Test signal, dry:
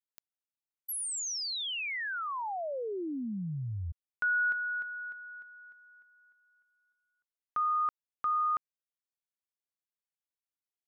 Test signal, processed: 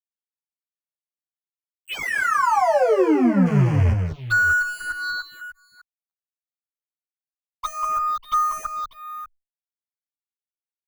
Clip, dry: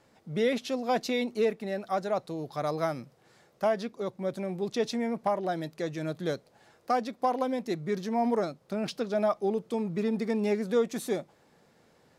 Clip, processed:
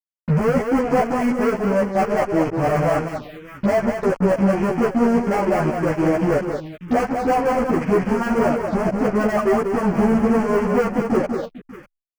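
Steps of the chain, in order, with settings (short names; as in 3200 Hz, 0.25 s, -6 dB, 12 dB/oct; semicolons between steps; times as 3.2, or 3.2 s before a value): rattling part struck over -45 dBFS, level -31 dBFS; HPF 74 Hz 12 dB/oct; dispersion highs, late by 0.102 s, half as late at 620 Hz; transient shaper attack +7 dB, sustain -8 dB; careless resampling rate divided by 8×, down filtered, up hold; air absorption 400 m; fuzz box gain 43 dB, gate -45 dBFS; on a send: tapped delay 0.193/0.594 s -5.5/-15 dB; on the sum: envelope phaser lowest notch 420 Hz, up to 3700 Hz, full sweep at -15.5 dBFS; bell 8200 Hz -10 dB 1.5 oct; endless flanger 11.7 ms +1.1 Hz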